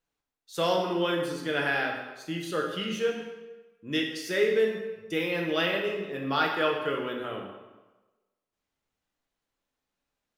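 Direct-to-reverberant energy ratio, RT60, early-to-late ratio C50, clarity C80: 0.0 dB, 1.2 s, 4.0 dB, 6.0 dB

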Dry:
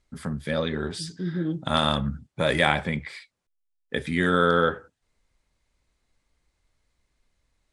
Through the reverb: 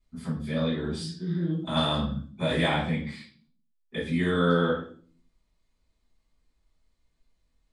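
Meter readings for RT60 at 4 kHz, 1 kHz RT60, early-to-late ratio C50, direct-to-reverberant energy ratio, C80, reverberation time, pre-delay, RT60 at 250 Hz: 0.40 s, 0.40 s, 5.0 dB, -10.5 dB, 10.5 dB, 0.45 s, 3 ms, 0.75 s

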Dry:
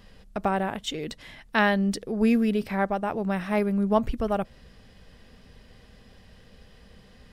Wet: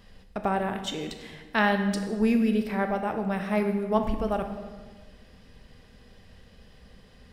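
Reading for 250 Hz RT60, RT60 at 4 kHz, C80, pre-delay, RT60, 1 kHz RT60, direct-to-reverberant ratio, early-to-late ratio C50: 1.7 s, 1.1 s, 9.5 dB, 19 ms, 1.5 s, 1.4 s, 6.0 dB, 8.0 dB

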